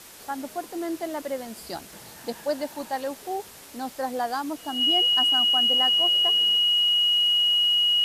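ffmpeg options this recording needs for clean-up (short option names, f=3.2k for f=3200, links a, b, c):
-af "adeclick=t=4,bandreject=f=2.9k:w=30,afwtdn=0.0056"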